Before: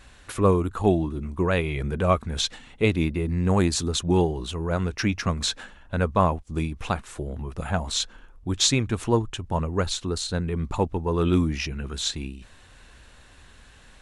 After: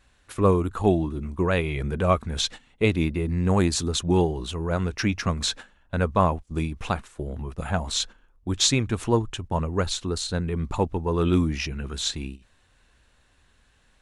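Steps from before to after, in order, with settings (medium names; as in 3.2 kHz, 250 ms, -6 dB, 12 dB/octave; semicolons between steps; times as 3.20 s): gate -36 dBFS, range -11 dB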